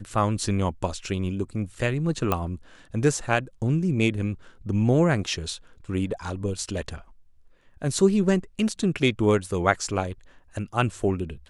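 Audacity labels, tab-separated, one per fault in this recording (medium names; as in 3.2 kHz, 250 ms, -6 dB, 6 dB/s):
2.320000	2.320000	pop -10 dBFS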